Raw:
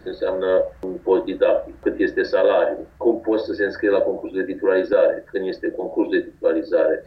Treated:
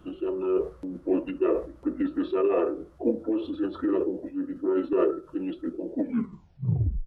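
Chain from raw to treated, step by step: tape stop on the ending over 1.08 s; feedback echo behind a band-pass 67 ms, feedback 31%, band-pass 820 Hz, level -16 dB; formant shift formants -5 st; trim -6.5 dB

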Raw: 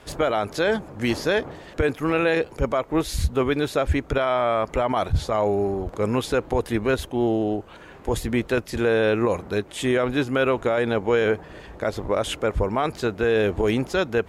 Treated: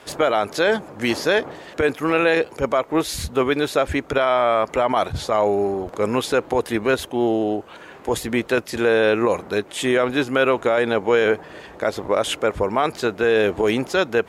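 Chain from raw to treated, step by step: high-pass 290 Hz 6 dB/octave; trim +4.5 dB

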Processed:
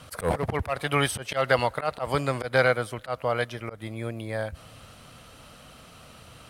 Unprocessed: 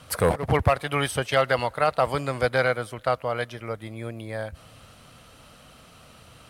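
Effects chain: slow attack 132 ms; trim +1.5 dB

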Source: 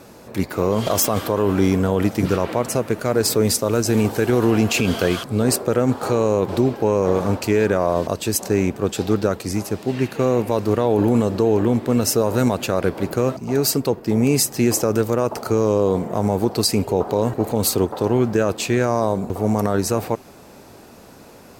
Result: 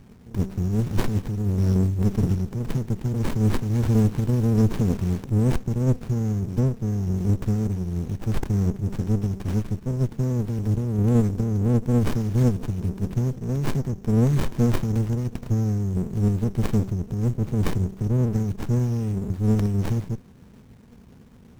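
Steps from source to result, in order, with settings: brick-wall FIR band-stop 270–5300 Hz; de-hum 191.1 Hz, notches 39; sliding maximum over 65 samples; trim +2 dB

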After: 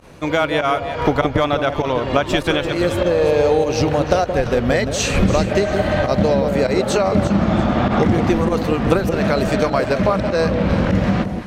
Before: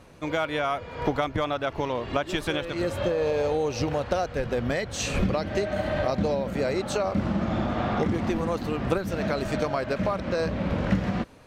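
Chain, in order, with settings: volume shaper 99 bpm, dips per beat 1, -20 dB, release 64 ms; echo whose repeats swap between lows and highs 172 ms, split 830 Hz, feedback 55%, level -6 dB; trim +9 dB

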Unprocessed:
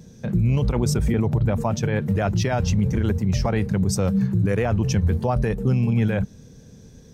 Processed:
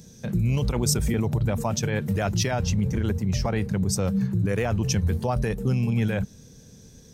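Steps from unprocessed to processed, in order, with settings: treble shelf 3.5 kHz +12 dB, from 2.51 s +5 dB, from 4.55 s +10 dB; trim -3.5 dB

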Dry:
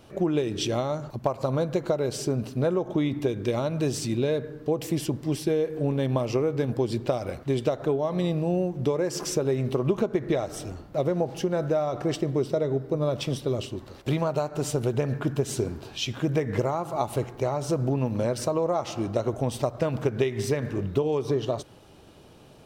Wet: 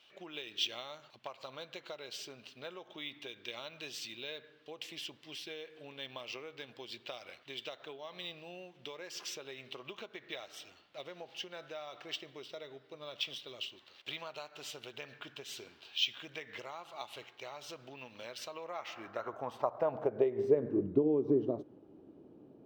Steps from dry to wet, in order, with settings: band-pass sweep 3.1 kHz -> 300 Hz, 18.46–20.88 s; decimation joined by straight lines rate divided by 2×; trim +1.5 dB

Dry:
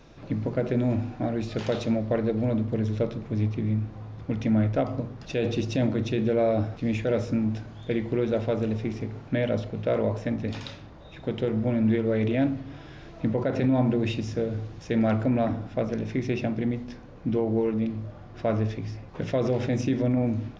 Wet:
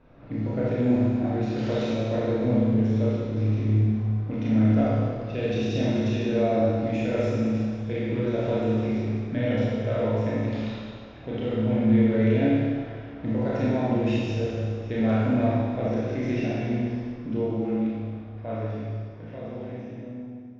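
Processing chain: fade out at the end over 3.87 s; level-controlled noise filter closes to 1.8 kHz, open at -19.5 dBFS; Schroeder reverb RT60 1.9 s, combs from 25 ms, DRR -7.5 dB; trim -7 dB

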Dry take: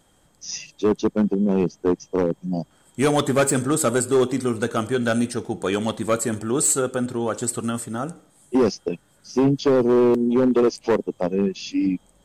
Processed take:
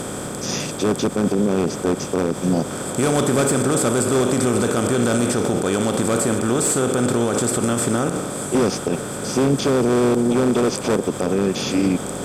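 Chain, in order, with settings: spectral levelling over time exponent 0.4; peak limiter -11 dBFS, peak gain reduction 9.5 dB; peaking EQ 74 Hz +6.5 dB 2 oct; on a send: repeats whose band climbs or falls 364 ms, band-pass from 620 Hz, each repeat 0.7 oct, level -10 dB; on the sum: Chebyshev shaper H 7 -40 dB, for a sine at -7.5 dBFS

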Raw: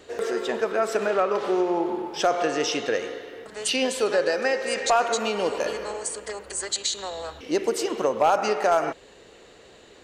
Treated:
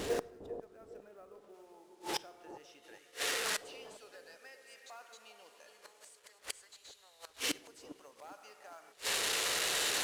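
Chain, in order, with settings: one-bit delta coder 64 kbps, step -33 dBFS; tilt shelf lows +3.5 dB, about 640 Hz, from 1.53 s lows -3.5 dB, from 2.82 s lows -9.5 dB; companded quantiser 6-bit; inverted gate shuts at -20 dBFS, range -34 dB; bucket-brigade echo 404 ms, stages 2048, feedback 33%, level -9 dB; reverberation RT60 0.95 s, pre-delay 7 ms, DRR 17 dB

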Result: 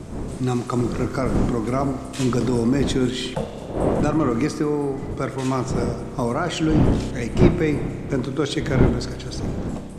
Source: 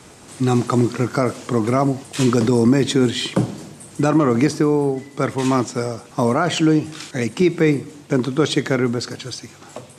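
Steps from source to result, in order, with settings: wind noise 270 Hz -20 dBFS; spring tank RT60 2.5 s, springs 31 ms, chirp 35 ms, DRR 9 dB; 3.35–4.00 s: ring modulator 340 Hz; trim -5.5 dB

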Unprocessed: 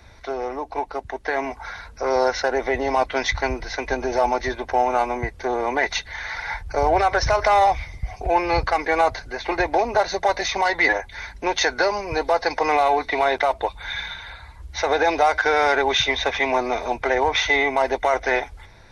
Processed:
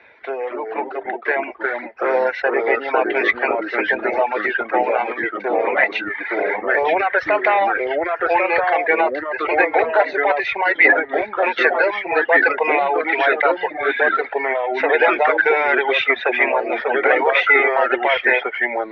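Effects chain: cabinet simulation 410–2800 Hz, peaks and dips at 470 Hz +4 dB, 760 Hz -4 dB, 1.2 kHz -6 dB, 1.7 kHz +4 dB, 2.5 kHz +7 dB; ever faster or slower copies 202 ms, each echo -2 st, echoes 2; reverb removal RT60 1 s; trim +4 dB

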